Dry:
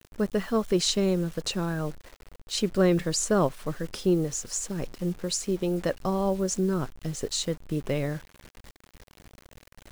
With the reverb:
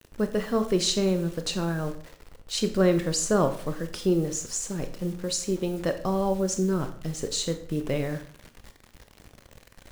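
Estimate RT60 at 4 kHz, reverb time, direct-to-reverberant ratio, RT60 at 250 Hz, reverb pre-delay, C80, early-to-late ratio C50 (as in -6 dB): 0.45 s, 0.50 s, 8.0 dB, 0.55 s, 23 ms, 15.0 dB, 11.5 dB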